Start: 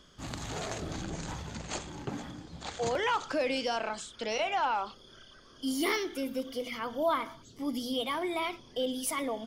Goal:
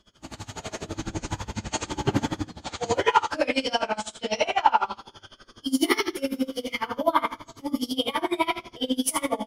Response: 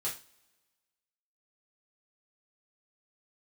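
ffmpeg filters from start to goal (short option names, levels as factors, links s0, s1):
-filter_complex "[0:a]asettb=1/sr,asplit=3[s0][s1][s2];[s0]atrim=end=1.854[s3];[s1]atrim=start=1.85:end=2.42,asetpts=PTS-STARTPTS,afade=t=in:d=0.004:c=qsin,afade=t=out:st=0.566:d=0.004:c=qsin,acontrast=68[s4];[s2]atrim=start=2.416[s5];[s3][s4]acrossfade=d=0.004:c1=hsin:c2=qsin[s6];[s6][s5]acrossfade=d=0.004:c1=qsin:c2=hsin[s7];[1:a]atrim=start_sample=2205,afade=t=out:st=0.41:d=0.01,atrim=end_sample=18522,asetrate=31311,aresample=44100[s8];[s7][s8]afir=irnorm=-1:irlink=0,dynaudnorm=f=630:g=3:m=2.24,aeval=exprs='val(0)*pow(10,-23*(0.5-0.5*cos(2*PI*12*n/s))/20)':c=same"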